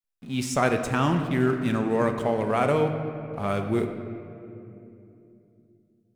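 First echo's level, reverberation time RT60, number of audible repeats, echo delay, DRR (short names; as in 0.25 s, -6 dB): none, 2.9 s, none, none, 5.0 dB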